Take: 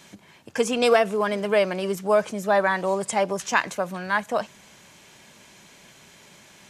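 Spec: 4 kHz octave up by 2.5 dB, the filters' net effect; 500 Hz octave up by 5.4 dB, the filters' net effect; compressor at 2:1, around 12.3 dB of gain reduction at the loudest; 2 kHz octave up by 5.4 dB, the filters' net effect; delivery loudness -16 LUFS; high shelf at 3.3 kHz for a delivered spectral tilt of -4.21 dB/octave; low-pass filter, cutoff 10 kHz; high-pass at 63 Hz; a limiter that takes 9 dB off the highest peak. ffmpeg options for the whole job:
-af "highpass=63,lowpass=10000,equalizer=f=500:t=o:g=6.5,equalizer=f=2000:t=o:g=7.5,highshelf=f=3300:g=-7,equalizer=f=4000:t=o:g=5,acompressor=threshold=0.0282:ratio=2,volume=5.62,alimiter=limit=0.531:level=0:latency=1"

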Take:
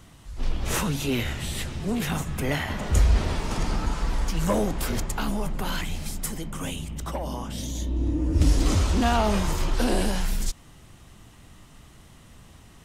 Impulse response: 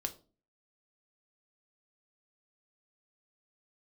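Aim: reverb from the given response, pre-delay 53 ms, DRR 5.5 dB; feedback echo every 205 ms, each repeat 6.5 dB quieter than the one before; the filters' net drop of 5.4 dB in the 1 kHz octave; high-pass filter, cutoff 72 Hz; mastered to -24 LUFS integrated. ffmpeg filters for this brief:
-filter_complex "[0:a]highpass=72,equalizer=f=1000:t=o:g=-7.5,aecho=1:1:205|410|615|820|1025|1230:0.473|0.222|0.105|0.0491|0.0231|0.0109,asplit=2[s0][s1];[1:a]atrim=start_sample=2205,adelay=53[s2];[s1][s2]afir=irnorm=-1:irlink=0,volume=0.531[s3];[s0][s3]amix=inputs=2:normalize=0,volume=1.41"

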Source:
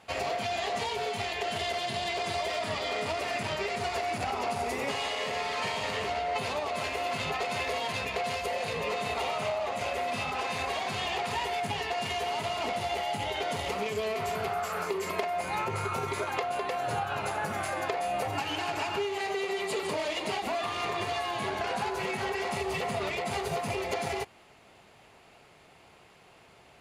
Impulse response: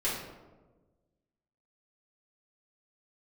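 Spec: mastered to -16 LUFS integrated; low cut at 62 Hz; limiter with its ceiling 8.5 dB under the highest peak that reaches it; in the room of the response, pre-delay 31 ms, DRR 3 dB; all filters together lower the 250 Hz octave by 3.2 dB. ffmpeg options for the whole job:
-filter_complex "[0:a]highpass=62,equalizer=f=250:t=o:g=-5,alimiter=level_in=1.12:limit=0.0631:level=0:latency=1,volume=0.891,asplit=2[s0][s1];[1:a]atrim=start_sample=2205,adelay=31[s2];[s1][s2]afir=irnorm=-1:irlink=0,volume=0.299[s3];[s0][s3]amix=inputs=2:normalize=0,volume=6.31"

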